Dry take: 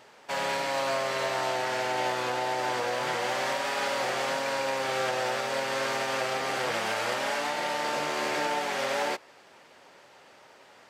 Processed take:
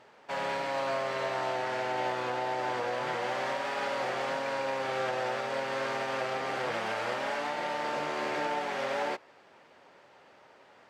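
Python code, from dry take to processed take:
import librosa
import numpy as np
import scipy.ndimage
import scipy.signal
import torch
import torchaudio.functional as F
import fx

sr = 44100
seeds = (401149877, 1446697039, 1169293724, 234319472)

y = fx.lowpass(x, sr, hz=2400.0, slope=6)
y = F.gain(torch.from_numpy(y), -2.0).numpy()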